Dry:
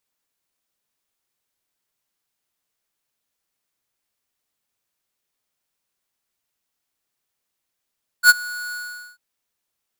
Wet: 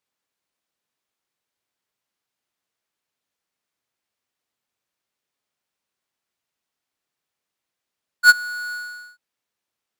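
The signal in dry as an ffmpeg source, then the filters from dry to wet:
-f lavfi -i "aevalsrc='0.422*(2*lt(mod(1460*t,1),0.5)-1)':d=0.944:s=44100,afade=t=in:d=0.066,afade=t=out:st=0.066:d=0.029:silence=0.075,afade=t=out:st=0.5:d=0.444"
-filter_complex "[0:a]highshelf=f=7.1k:g=-10,asplit=2[a][b];[b]acrusher=bits=4:mix=0:aa=0.5,volume=-11.5dB[c];[a][c]amix=inputs=2:normalize=0,highpass=f=93:p=1"

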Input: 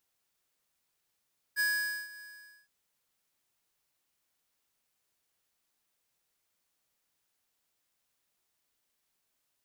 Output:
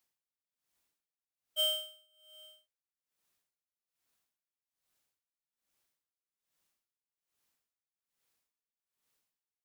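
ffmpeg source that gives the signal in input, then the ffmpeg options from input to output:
-f lavfi -i "aevalsrc='0.0398*(2*lt(mod(1670*t,1),0.5)-1)':d=1.119:s=44100,afade=t=in:d=0.039,afade=t=out:st=0.039:d=0.479:silence=0.1,afade=t=out:st=0.65:d=0.469"
-af "afftfilt=real='real(if(lt(b,272),68*(eq(floor(b/68),0)*3+eq(floor(b/68),1)*2+eq(floor(b/68),2)*1+eq(floor(b/68),3)*0)+mod(b,68),b),0)':imag='imag(if(lt(b,272),68*(eq(floor(b/68),0)*3+eq(floor(b/68),1)*2+eq(floor(b/68),2)*1+eq(floor(b/68),3)*0)+mod(b,68),b),0)':win_size=2048:overlap=0.75,aeval=exprs='val(0)*pow(10,-25*(0.5-0.5*cos(2*PI*1.2*n/s))/20)':c=same"

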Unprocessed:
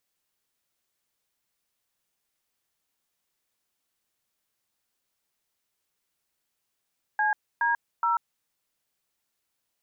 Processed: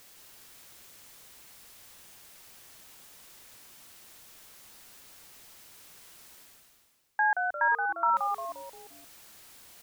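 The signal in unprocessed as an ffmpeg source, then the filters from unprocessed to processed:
-f lavfi -i "aevalsrc='0.0631*clip(min(mod(t,0.42),0.14-mod(t,0.42))/0.002,0,1)*(eq(floor(t/0.42),0)*(sin(2*PI*852*mod(t,0.42))+sin(2*PI*1633*mod(t,0.42)))+eq(floor(t/0.42),1)*(sin(2*PI*941*mod(t,0.42))+sin(2*PI*1633*mod(t,0.42)))+eq(floor(t/0.42),2)*(sin(2*PI*941*mod(t,0.42))+sin(2*PI*1336*mod(t,0.42))))':d=1.26:s=44100"
-filter_complex "[0:a]areverse,acompressor=mode=upward:threshold=-33dB:ratio=2.5,areverse,asplit=6[a][b][c][d][e][f];[b]adelay=175,afreqshift=-130,volume=-5dB[g];[c]adelay=350,afreqshift=-260,volume=-12.1dB[h];[d]adelay=525,afreqshift=-390,volume=-19.3dB[i];[e]adelay=700,afreqshift=-520,volume=-26.4dB[j];[f]adelay=875,afreqshift=-650,volume=-33.5dB[k];[a][g][h][i][j][k]amix=inputs=6:normalize=0"

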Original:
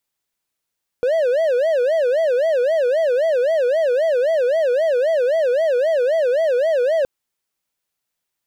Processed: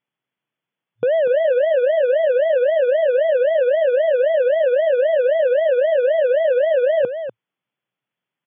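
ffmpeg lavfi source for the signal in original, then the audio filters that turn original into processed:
-f lavfi -i "aevalsrc='0.237*(1-4*abs(mod((571*t-89/(2*PI*3.8)*sin(2*PI*3.8*t))+0.25,1)-0.5))':d=6.02:s=44100"
-filter_complex "[0:a]afftfilt=real='re*between(b*sr/4096,110,3500)':imag='im*between(b*sr/4096,110,3500)':win_size=4096:overlap=0.75,lowshelf=f=180:g=11,asplit=2[a][b];[b]aecho=0:1:245:0.335[c];[a][c]amix=inputs=2:normalize=0"

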